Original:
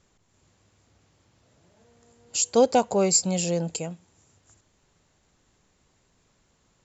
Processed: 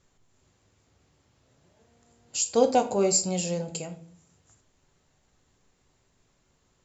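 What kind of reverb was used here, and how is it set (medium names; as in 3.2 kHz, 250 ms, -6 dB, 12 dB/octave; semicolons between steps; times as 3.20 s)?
simulated room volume 45 m³, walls mixed, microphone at 0.31 m; trim -3.5 dB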